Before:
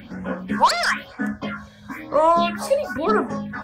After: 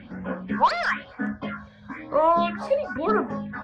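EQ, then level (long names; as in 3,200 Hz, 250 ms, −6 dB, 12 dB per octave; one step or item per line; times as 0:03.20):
low-pass filter 3,100 Hz 12 dB per octave
−3.0 dB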